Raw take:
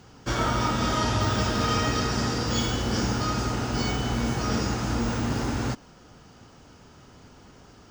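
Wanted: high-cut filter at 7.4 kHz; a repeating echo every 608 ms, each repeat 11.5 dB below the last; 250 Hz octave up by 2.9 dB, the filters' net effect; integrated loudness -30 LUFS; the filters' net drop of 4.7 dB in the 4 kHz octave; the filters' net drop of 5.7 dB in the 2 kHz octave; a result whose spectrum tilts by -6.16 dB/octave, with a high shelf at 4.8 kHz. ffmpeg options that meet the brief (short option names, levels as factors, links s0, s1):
-af "lowpass=7400,equalizer=f=250:t=o:g=3.5,equalizer=f=2000:t=o:g=-7,equalizer=f=4000:t=o:g=-6.5,highshelf=f=4800:g=4.5,aecho=1:1:608|1216|1824:0.266|0.0718|0.0194,volume=0.596"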